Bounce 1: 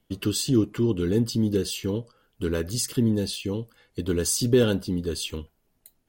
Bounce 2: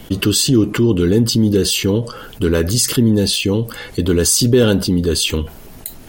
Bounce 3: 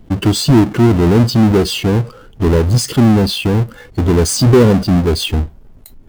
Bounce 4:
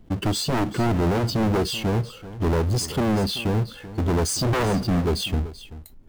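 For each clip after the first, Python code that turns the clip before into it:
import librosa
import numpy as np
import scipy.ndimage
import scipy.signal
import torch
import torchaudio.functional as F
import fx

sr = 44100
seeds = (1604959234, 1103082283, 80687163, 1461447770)

y1 = fx.env_flatten(x, sr, amount_pct=50)
y1 = y1 * librosa.db_to_amplitude(6.0)
y2 = fx.halfwave_hold(y1, sr)
y2 = fx.leveller(y2, sr, passes=1)
y2 = fx.spectral_expand(y2, sr, expansion=1.5)
y3 = 10.0 ** (-9.0 / 20.0) * (np.abs((y2 / 10.0 ** (-9.0 / 20.0) + 3.0) % 4.0 - 2.0) - 1.0)
y3 = y3 + 10.0 ** (-15.5 / 20.0) * np.pad(y3, (int(384 * sr / 1000.0), 0))[:len(y3)]
y3 = y3 * librosa.db_to_amplitude(-8.5)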